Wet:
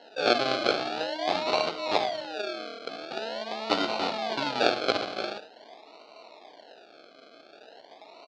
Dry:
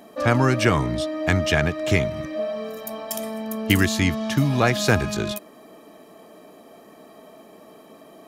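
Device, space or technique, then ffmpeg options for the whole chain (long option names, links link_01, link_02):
circuit-bent sampling toy: -filter_complex "[0:a]bandreject=frequency=60:width_type=h:width=6,bandreject=frequency=120:width_type=h:width=6,bandreject=frequency=180:width_type=h:width=6,asettb=1/sr,asplit=3[link_01][link_02][link_03];[link_01]atrim=end=2.134[link_04];[link_02]atrim=start=2.13:end=2.84,asetpts=PTS-STARTPTS,afade=type=in:duration=0.004:curve=qsin,afade=type=out:start_time=0.706:duration=0.004:curve=qsin,lowpass=frequency=1300:width=0.5412,lowpass=frequency=1300:width=1.3066[link_05];[link_03]atrim=start=2.836[link_06];[link_04][link_05]acrossfade=duration=0.004:curve1=hsin:curve2=qsin[link_07];[link_07][link_06]acrossfade=duration=0.004:curve1=qsin:curve2=hsin,aecho=1:1:17|77:0.422|0.282,acrusher=samples=37:mix=1:aa=0.000001:lfo=1:lforange=22.2:lforate=0.45,highpass=580,equalizer=frequency=740:width_type=q:width=4:gain=4,equalizer=frequency=1100:width_type=q:width=4:gain=-4,equalizer=frequency=1900:width_type=q:width=4:gain=-8,equalizer=frequency=4300:width_type=q:width=4:gain=8,lowpass=frequency=4500:width=0.5412,lowpass=frequency=4500:width=1.3066,volume=-1dB"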